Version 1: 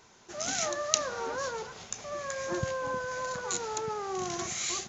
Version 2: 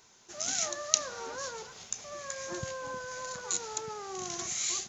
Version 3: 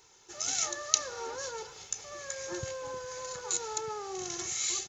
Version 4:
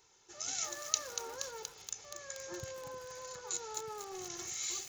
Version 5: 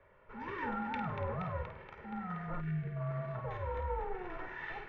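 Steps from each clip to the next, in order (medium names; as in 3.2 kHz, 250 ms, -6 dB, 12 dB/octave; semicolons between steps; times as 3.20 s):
treble shelf 3.5 kHz +10.5 dB; trim -6.5 dB
comb 2.3 ms, depth 59%; trim -1 dB
bit-crushed delay 237 ms, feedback 80%, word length 6-bit, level -7.5 dB; trim -6.5 dB
flutter echo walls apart 8.8 m, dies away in 0.39 s; mistuned SSB -370 Hz 370–2400 Hz; time-frequency box 2.61–2.97 s, 460–1400 Hz -15 dB; trim +9 dB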